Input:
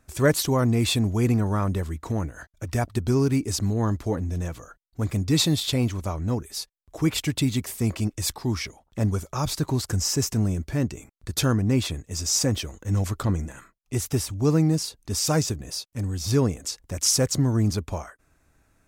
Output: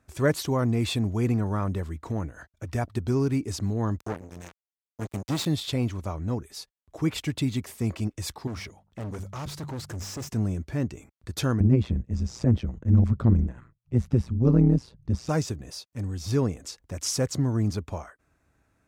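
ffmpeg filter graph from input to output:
ffmpeg -i in.wav -filter_complex "[0:a]asettb=1/sr,asplit=3[link_01][link_02][link_03];[link_01]atrim=end=3.984[link_04];[link_02]atrim=start=3.98:end=5.46,asetpts=PTS-STARTPTS,afade=type=in:duration=0.004:curve=qsin,afade=type=out:start_time=1.476:duration=0.004:curve=qsin,highshelf=frequency=5100:gain=4.5,acompressor=threshold=-29dB:ratio=1.5:attack=3.2:release=140:knee=1:detection=peak,acrusher=bits=3:mix=0:aa=0.5[link_05];[link_03]atrim=start=5.456[link_06];[link_04][link_05]acrossfade=duration=0.004:curve1=hsin:curve2=qsin[link_07];[link_07][link_06]acrossfade=duration=0.004:curve1=qsin:curve2=hsin,asettb=1/sr,asplit=3[link_08][link_09][link_10];[link_08]atrim=end=8.474[link_11];[link_09]atrim=start=8.47:end=10.29,asetpts=PTS-STARTPTS,afade=type=in:duration=0.004:curve=qsin,afade=type=out:start_time=1.816:duration=0.004:curve=qsin,bandreject=frequency=48.79:width_type=h:width=4,bandreject=frequency=97.58:width_type=h:width=4,bandreject=frequency=146.37:width_type=h:width=4,bandreject=frequency=195.16:width_type=h:width=4,volume=28.5dB,asoftclip=hard,volume=-28.5dB[link_12];[link_10]atrim=start=10.286[link_13];[link_11][link_12]acrossfade=duration=0.004:curve1=hsin:curve2=qsin[link_14];[link_14][link_13]acrossfade=duration=0.004:curve1=qsin:curve2=hsin,asettb=1/sr,asplit=3[link_15][link_16][link_17];[link_15]atrim=end=11.604[link_18];[link_16]atrim=start=11.6:end=15.29,asetpts=PTS-STARTPTS,afade=type=in:duration=0.004:curve=qsin,afade=type=out:start_time=3.686:duration=0.004:curve=qsin,aemphasis=mode=reproduction:type=riaa,tremolo=f=120:d=0.889[link_19];[link_17]atrim=start=15.286[link_20];[link_18][link_19]acrossfade=duration=0.004:curve1=hsin:curve2=qsin[link_21];[link_21][link_20]acrossfade=duration=0.004:curve1=qsin:curve2=hsin,highpass=49,highshelf=frequency=4800:gain=-8,volume=-3dB" out.wav

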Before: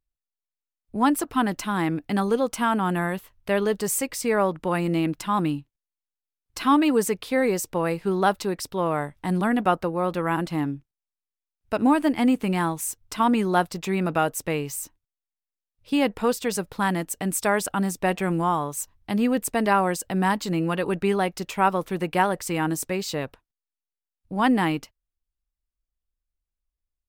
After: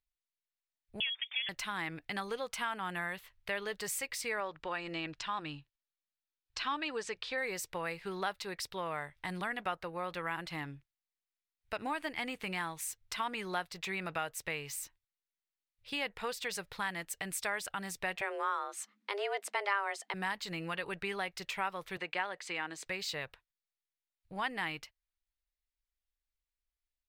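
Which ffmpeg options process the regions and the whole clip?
ffmpeg -i in.wav -filter_complex "[0:a]asettb=1/sr,asplit=3[link_01][link_02][link_03];[link_01]atrim=end=1.004[link_04];[link_02]atrim=start=1:end=1.49,asetpts=PTS-STARTPTS,afade=type=in:duration=0.004:curve=qsin,afade=type=out:start_time=0.486:duration=0.004:curve=qsin,acrossover=split=340|1100|2800[link_05][link_06][link_07][link_08];[link_05]acompressor=threshold=-37dB:ratio=3[link_09];[link_06]acompressor=threshold=-34dB:ratio=3[link_10];[link_07]acompressor=threshold=-35dB:ratio=3[link_11];[link_08]acompressor=threshold=-48dB:ratio=3[link_12];[link_09][link_10][link_11][link_12]amix=inputs=4:normalize=0,lowpass=frequency=3100:width_type=q:width=0.5098,lowpass=frequency=3100:width_type=q:width=0.6013,lowpass=frequency=3100:width_type=q:width=0.9,lowpass=frequency=3100:width_type=q:width=2.563,afreqshift=-3600[link_13];[link_03]atrim=start=1.486[link_14];[link_04][link_13]acrossfade=duration=0.004:curve1=hsin:curve2=qsin[link_15];[link_15][link_14]acrossfade=duration=0.004:curve1=qsin:curve2=hsin,asettb=1/sr,asplit=3[link_16][link_17][link_18];[link_16]atrim=end=4.404[link_19];[link_17]atrim=start=4.4:end=7.38,asetpts=PTS-STARTPTS,afade=type=in:duration=0.004:curve=qsin,afade=type=out:start_time=2.976:duration=0.004:curve=qsin,lowpass=frequency=6900:width=0.5412,lowpass=frequency=6900:width=1.3066,equalizer=frequency=180:width=6.1:gain=-10,bandreject=frequency=2100:width=11[link_20];[link_18]atrim=start=7.376[link_21];[link_19][link_20]acrossfade=duration=0.004:curve1=hsin:curve2=qsin[link_22];[link_22][link_21]acrossfade=duration=0.004:curve1=qsin:curve2=hsin,asettb=1/sr,asplit=3[link_23][link_24][link_25];[link_23]atrim=end=18.214[link_26];[link_24]atrim=start=18.21:end=20.14,asetpts=PTS-STARTPTS,afade=type=in:duration=0.004:curve=qsin,afade=type=out:start_time=1.926:duration=0.004:curve=qsin,lowpass=9000,equalizer=frequency=840:width_type=o:width=2.5:gain=4.5,afreqshift=200[link_27];[link_25]atrim=start=20.136[link_28];[link_26][link_27]acrossfade=duration=0.004:curve1=hsin:curve2=qsin[link_29];[link_29][link_28]acrossfade=duration=0.004:curve1=qsin:curve2=hsin,asettb=1/sr,asplit=3[link_30][link_31][link_32];[link_30]atrim=end=21.974[link_33];[link_31]atrim=start=21.97:end=22.86,asetpts=PTS-STARTPTS,afade=type=in:duration=0.004:curve=qsin,afade=type=out:start_time=0.886:duration=0.004:curve=qsin,acrossover=split=200 7200:gain=0.0708 1 0.0891[link_34][link_35][link_36];[link_34][link_35][link_36]amix=inputs=3:normalize=0,bandreject=frequency=5500:width=8.8[link_37];[link_32]atrim=start=22.856[link_38];[link_33][link_37]acrossfade=duration=0.004:curve1=hsin:curve2=qsin[link_39];[link_39][link_38]acrossfade=duration=0.004:curve1=qsin:curve2=hsin,equalizer=frequency=250:width_type=o:width=1:gain=-12,equalizer=frequency=2000:width_type=o:width=1:gain=9,equalizer=frequency=4000:width_type=o:width=1:gain=7,acompressor=threshold=-29dB:ratio=2,volume=-8.5dB" out.wav

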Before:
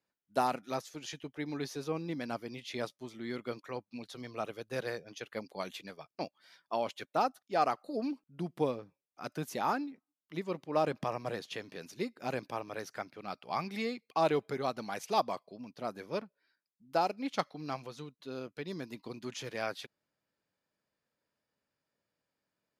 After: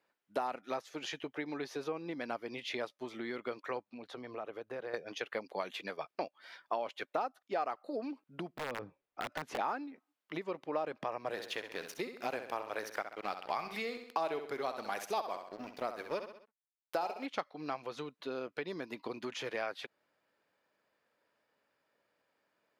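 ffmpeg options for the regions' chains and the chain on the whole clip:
ffmpeg -i in.wav -filter_complex "[0:a]asettb=1/sr,asplit=3[link_01][link_02][link_03];[link_01]atrim=end=3.914[link_04];[link_02]atrim=start=3.91:end=4.94,asetpts=PTS-STARTPTS,afade=type=in:duration=0.004:curve=qsin,afade=type=out:start_time=1.026:duration=0.004:curve=qsin,highshelf=frequency=2300:gain=-11,acompressor=threshold=-48dB:ratio=4:attack=3.2:release=140:knee=1:detection=peak[link_05];[link_03]atrim=start=4.936[link_06];[link_04][link_05]acrossfade=duration=0.004:curve1=hsin:curve2=qsin[link_07];[link_07][link_06]acrossfade=duration=0.004:curve1=qsin:curve2=hsin,asettb=1/sr,asplit=3[link_08][link_09][link_10];[link_08]atrim=end=8.544[link_11];[link_09]atrim=start=8.54:end=9.59,asetpts=PTS-STARTPTS,afade=type=in:duration=0.004:curve=qsin,afade=type=out:start_time=1.046:duration=0.004:curve=qsin,aemphasis=mode=reproduction:type=bsi,acompressor=threshold=-39dB:ratio=10:attack=3.2:release=140:knee=1:detection=peak,aeval=exprs='(mod(66.8*val(0)+1,2)-1)/66.8':channel_layout=same[link_12];[link_10]atrim=start=9.586[link_13];[link_11][link_12]acrossfade=duration=0.004:curve1=hsin:curve2=qsin[link_14];[link_14][link_13]acrossfade=duration=0.004:curve1=qsin:curve2=hsin,asettb=1/sr,asplit=3[link_15][link_16][link_17];[link_15]atrim=end=11.304[link_18];[link_16]atrim=start=11.3:end=17.26,asetpts=PTS-STARTPTS,afade=type=in:duration=0.004:curve=qsin,afade=type=out:start_time=5.956:duration=0.004:curve=qsin,aemphasis=mode=production:type=50kf,aeval=exprs='sgn(val(0))*max(abs(val(0))-0.00282,0)':channel_layout=same,aecho=1:1:65|130|195|260:0.316|0.111|0.0387|0.0136,atrim=end_sample=262836[link_19];[link_17]atrim=start=17.256[link_20];[link_18][link_19]acrossfade=duration=0.004:curve1=hsin:curve2=qsin[link_21];[link_21][link_20]acrossfade=duration=0.004:curve1=qsin:curve2=hsin,acompressor=threshold=-43dB:ratio=6,bass=frequency=250:gain=-14,treble=frequency=4000:gain=-12,volume=10.5dB" out.wav

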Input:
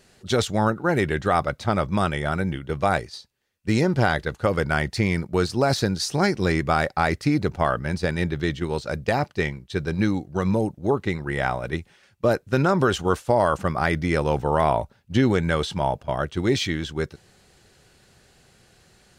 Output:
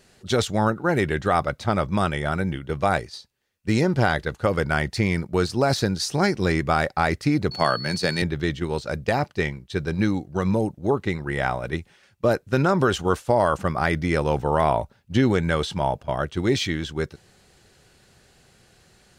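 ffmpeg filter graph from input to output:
ffmpeg -i in.wav -filter_complex "[0:a]asettb=1/sr,asplit=3[link_01][link_02][link_03];[link_01]atrim=end=7.514[link_04];[link_02]atrim=start=7.51:end=8.22,asetpts=PTS-STARTPTS,afade=type=in:duration=0.004:curve=qsin,afade=type=out:start_time=0.706:duration=0.004:curve=qsin,aeval=exprs='val(0)+0.0112*sin(2*PI*4400*n/s)':channel_layout=same,highpass=frequency=110:width=0.5412,highpass=frequency=110:width=1.3066,highshelf=frequency=2600:gain=9[link_05];[link_03]atrim=start=8.216[link_06];[link_04][link_05]acrossfade=duration=0.004:curve1=hsin:curve2=qsin[link_07];[link_07][link_06]acrossfade=duration=0.004:curve1=qsin:curve2=hsin" out.wav

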